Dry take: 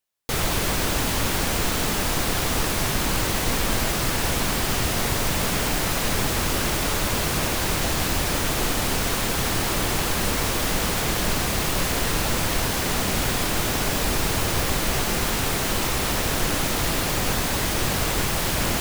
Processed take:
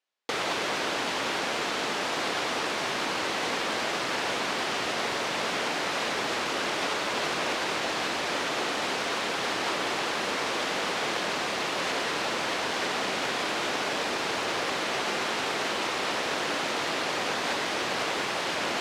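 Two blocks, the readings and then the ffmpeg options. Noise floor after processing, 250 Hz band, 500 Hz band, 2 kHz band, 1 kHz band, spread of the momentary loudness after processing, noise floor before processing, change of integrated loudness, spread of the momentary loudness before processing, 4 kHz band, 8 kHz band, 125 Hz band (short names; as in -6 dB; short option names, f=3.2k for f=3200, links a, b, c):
-31 dBFS, -8.0 dB, -2.5 dB, -1.5 dB, -1.5 dB, 0 LU, -25 dBFS, -5.5 dB, 0 LU, -3.5 dB, -11.5 dB, -19.5 dB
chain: -af "acrusher=bits=3:mode=log:mix=0:aa=0.000001,alimiter=limit=-15.5dB:level=0:latency=1:release=166,highpass=360,lowpass=4.4k,volume=2dB"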